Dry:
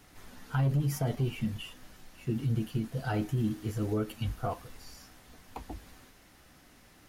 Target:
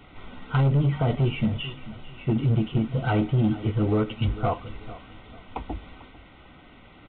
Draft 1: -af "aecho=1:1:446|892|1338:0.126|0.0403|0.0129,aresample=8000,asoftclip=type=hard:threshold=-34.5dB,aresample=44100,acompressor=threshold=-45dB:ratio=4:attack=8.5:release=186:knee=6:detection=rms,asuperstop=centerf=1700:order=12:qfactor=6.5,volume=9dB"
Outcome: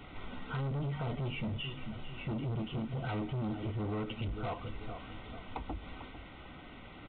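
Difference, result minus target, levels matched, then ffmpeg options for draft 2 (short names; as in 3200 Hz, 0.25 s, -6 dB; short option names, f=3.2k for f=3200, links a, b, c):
compressor: peak gain reduction +8 dB; hard clip: distortion +9 dB
-af "aecho=1:1:446|892|1338:0.126|0.0403|0.0129,aresample=8000,asoftclip=type=hard:threshold=-26.5dB,aresample=44100,asuperstop=centerf=1700:order=12:qfactor=6.5,volume=9dB"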